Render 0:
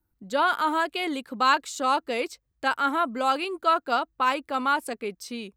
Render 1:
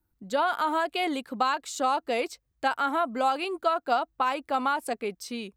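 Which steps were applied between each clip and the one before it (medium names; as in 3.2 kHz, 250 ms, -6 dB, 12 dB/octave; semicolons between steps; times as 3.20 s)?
compression, threshold -24 dBFS, peak gain reduction 8.5 dB; dynamic bell 730 Hz, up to +7 dB, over -46 dBFS, Q 2.8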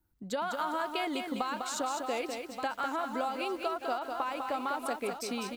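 delay 1175 ms -15.5 dB; compression 6:1, threshold -31 dBFS, peak gain reduction 11 dB; bit-crushed delay 201 ms, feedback 35%, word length 9-bit, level -5 dB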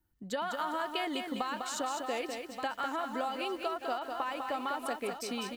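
small resonant body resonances 1.8/3 kHz, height 14 dB, ringing for 85 ms; trim -1.5 dB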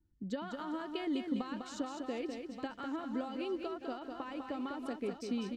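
FFT filter 320 Hz 0 dB, 730 Hz -14 dB, 5.6 kHz -12 dB, 15 kHz -30 dB; trim +3.5 dB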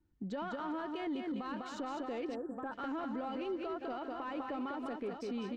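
spectral selection erased 2.35–2.72 s, 1.8–7.2 kHz; peak limiter -33.5 dBFS, peak gain reduction 9.5 dB; overdrive pedal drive 10 dB, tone 1.2 kHz, clips at -33 dBFS; trim +4 dB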